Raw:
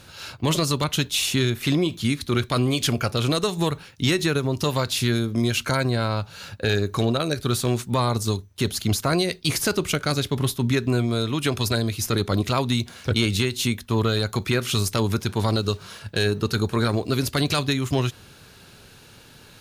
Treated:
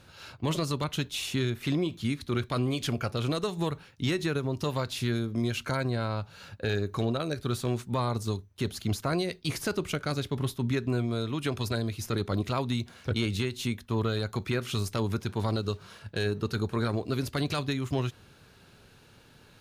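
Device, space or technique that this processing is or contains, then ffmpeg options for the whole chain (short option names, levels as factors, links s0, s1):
behind a face mask: -af "highshelf=f=3400:g=-7,volume=0.473"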